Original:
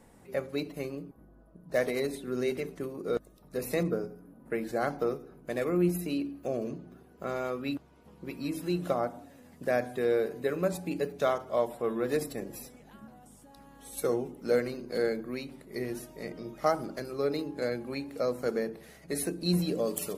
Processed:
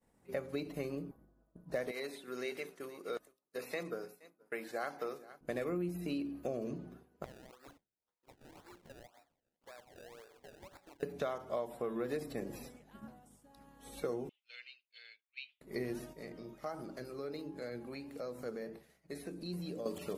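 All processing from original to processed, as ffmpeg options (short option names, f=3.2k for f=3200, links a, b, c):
-filter_complex "[0:a]asettb=1/sr,asplit=3[a][b][c];[a]atrim=end=1.914[d];[b]atrim=start=1.91:end=5.41,asetpts=PTS-STARTPTS,afade=t=in:d=0.004:c=qsin,afade=t=out:st=3.496:d=0.004:c=qsin,highpass=f=1.1k:p=1,aecho=1:1:470:0.119,atrim=end_sample=154350[e];[c]atrim=start=5.406[f];[d][e]acrossfade=d=0.004:c1=hsin:c2=qsin[g];[g][f]acrossfade=d=0.004:c1=qsin:c2=hsin,asettb=1/sr,asplit=3[h][i][j];[h]atrim=end=7.244[k];[i]atrim=start=7.24:end=11.03,asetpts=PTS-STARTPTS,afade=t=in:d=0.004:c=qsin,afade=t=out:st=3.786:d=0.004:c=qsin,highpass=850,acrusher=samples=28:mix=1:aa=0.000001:lfo=1:lforange=28:lforate=1.9,acompressor=threshold=-48dB:ratio=8:attack=3.2:release=140:knee=1:detection=peak[l];[j]atrim=start=11.026[m];[k][l]acrossfade=d=0.004:c1=hsin:c2=qsin[n];[n][m]acrossfade=d=0.004:c1=qsin:c2=hsin,asettb=1/sr,asplit=3[o][p][q];[o]atrim=end=14.294[r];[p]atrim=start=14.29:end=15.61,asetpts=PTS-STARTPTS,afade=t=in:d=0.004:c=qsin,afade=t=out:st=1.316:d=0.004:c=qsin,asuperpass=centerf=3000:order=4:qfactor=2.9,acontrast=31[s];[q]atrim=start=15.606[t];[r][s]acrossfade=d=0.004:c1=hsin:c2=qsin[u];[u][t]acrossfade=d=0.004:c1=qsin:c2=hsin,asettb=1/sr,asplit=3[v][w][x];[v]atrim=end=16.134[y];[w]atrim=start=16.13:end=19.86,asetpts=PTS-STARTPTS,afade=t=in:d=0.004:c=qsin,afade=t=out:st=3.726:d=0.004:c=qsin,acompressor=threshold=-39dB:ratio=2:attack=3.2:release=140:knee=1:detection=peak,flanger=delay=5.3:depth=5.6:regen=77:speed=1.4:shape=triangular[z];[x]atrim=start=19.856[aa];[y][z]acrossfade=d=0.004:c1=hsin:c2=qsin[ab];[ab][aa]acrossfade=d=0.004:c1=qsin:c2=hsin,acompressor=threshold=-34dB:ratio=6,agate=range=-33dB:threshold=-47dB:ratio=3:detection=peak,acrossover=split=4300[ac][ad];[ad]acompressor=threshold=-56dB:ratio=4:attack=1:release=60[ae];[ac][ae]amix=inputs=2:normalize=0"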